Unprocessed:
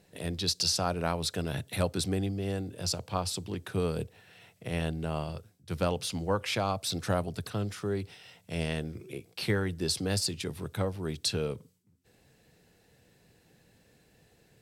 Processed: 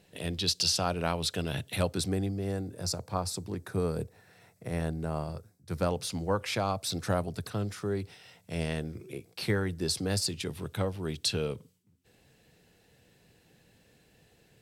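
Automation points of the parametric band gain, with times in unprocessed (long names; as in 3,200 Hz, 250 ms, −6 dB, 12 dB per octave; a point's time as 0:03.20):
parametric band 3,000 Hz 0.57 octaves
0:01.71 +5.5 dB
0:02.15 −6 dB
0:02.86 −13.5 dB
0:05.38 −13.5 dB
0:06.25 −3.5 dB
0:10.13 −3.5 dB
0:10.53 +3.5 dB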